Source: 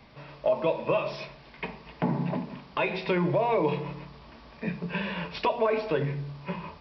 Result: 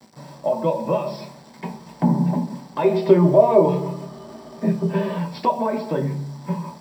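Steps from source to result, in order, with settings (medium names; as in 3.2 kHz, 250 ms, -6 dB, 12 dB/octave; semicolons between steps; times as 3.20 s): word length cut 8-bit, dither none; 2.84–5.18 s: small resonant body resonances 400/630/1200/3000 Hz, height 16 dB, ringing for 85 ms; reverberation, pre-delay 3 ms, DRR 3.5 dB; trim -5.5 dB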